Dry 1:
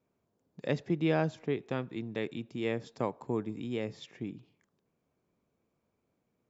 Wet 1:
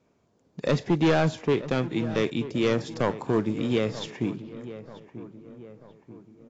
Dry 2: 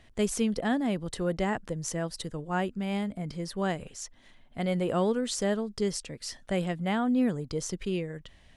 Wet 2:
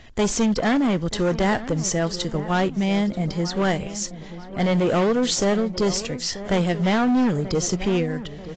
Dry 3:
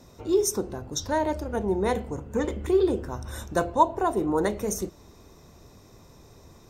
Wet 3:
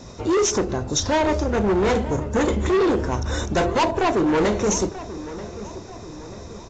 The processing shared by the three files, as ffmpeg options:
-filter_complex "[0:a]highshelf=f=5400:g=3,asplit=2[s0][s1];[s1]asoftclip=type=tanh:threshold=0.0631,volume=0.631[s2];[s0][s2]amix=inputs=2:normalize=0,acrusher=bits=8:mode=log:mix=0:aa=0.000001,asoftclip=type=hard:threshold=0.0708,asplit=2[s3][s4];[s4]adelay=936,lowpass=f=1700:p=1,volume=0.2,asplit=2[s5][s6];[s6]adelay=936,lowpass=f=1700:p=1,volume=0.52,asplit=2[s7][s8];[s8]adelay=936,lowpass=f=1700:p=1,volume=0.52,asplit=2[s9][s10];[s10]adelay=936,lowpass=f=1700:p=1,volume=0.52,asplit=2[s11][s12];[s12]adelay=936,lowpass=f=1700:p=1,volume=0.52[s13];[s5][s7][s9][s11][s13]amix=inputs=5:normalize=0[s14];[s3][s14]amix=inputs=2:normalize=0,volume=2.11" -ar 16000 -c:a aac -b:a 32k

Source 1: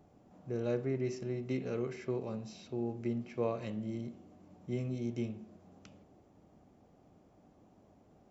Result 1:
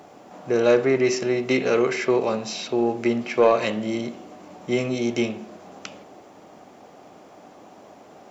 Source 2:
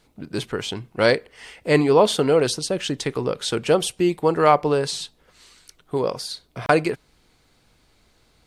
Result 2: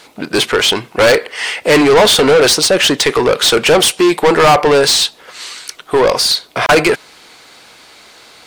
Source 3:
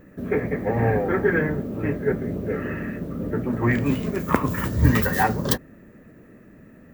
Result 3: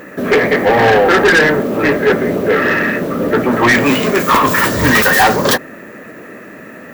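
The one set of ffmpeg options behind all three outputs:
-filter_complex "[0:a]lowshelf=f=200:g=-6,asplit=2[s0][s1];[s1]highpass=f=720:p=1,volume=31.6,asoftclip=type=tanh:threshold=0.891[s2];[s0][s2]amix=inputs=2:normalize=0,lowpass=f=7400:p=1,volume=0.501"

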